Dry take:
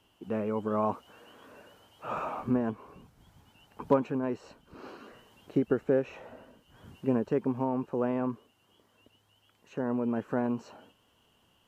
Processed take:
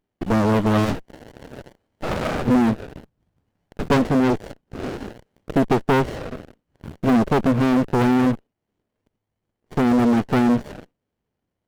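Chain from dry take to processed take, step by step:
leveller curve on the samples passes 5
windowed peak hold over 33 samples

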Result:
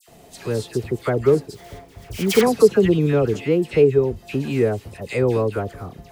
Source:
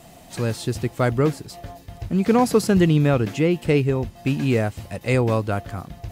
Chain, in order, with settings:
parametric band 420 Hz +11.5 dB 0.41 octaves
0:01.54–0:02.41: sample-rate reduction 2,700 Hz, jitter 20%
all-pass dispersion lows, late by 85 ms, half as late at 1,700 Hz
level −3 dB

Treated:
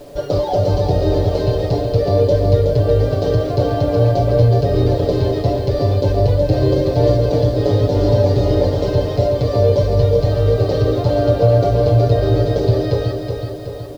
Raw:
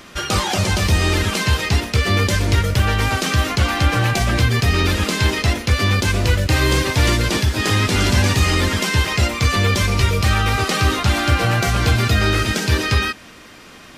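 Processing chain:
high-shelf EQ 2,900 Hz −8 dB
comb filter 7 ms, depth 97%
feedback delay network reverb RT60 0.48 s, low-frequency decay 0.8×, high-frequency decay 0.45×, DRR 15 dB
in parallel at −2 dB: downward compressor 5 to 1, threshold −25 dBFS, peak gain reduction 13.5 dB
on the sum: drawn EQ curve 100 Hz 0 dB, 230 Hz −8 dB, 340 Hz −1 dB, 550 Hz +10 dB, 1,300 Hz −20 dB, 2,500 Hz −21 dB, 4,400 Hz −7 dB, 9,300 Hz −29 dB
on a send: repeating echo 372 ms, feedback 55%, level −6 dB
on the sum: bit-depth reduction 8 bits, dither none
level −1 dB

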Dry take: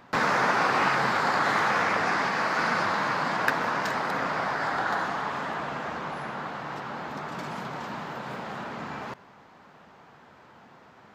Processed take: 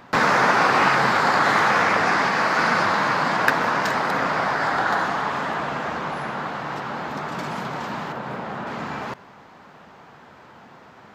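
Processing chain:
0:08.12–0:08.67: high-shelf EQ 2,800 Hz −9 dB
level +6 dB

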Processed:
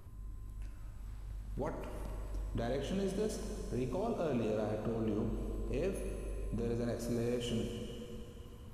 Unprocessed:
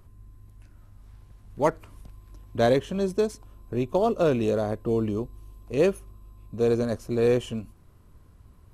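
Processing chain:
downward compressor, threshold −28 dBFS, peak gain reduction 11.5 dB
brickwall limiter −30 dBFS, peak gain reduction 11 dB
dense smooth reverb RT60 3.1 s, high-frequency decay 1×, DRR 2 dB

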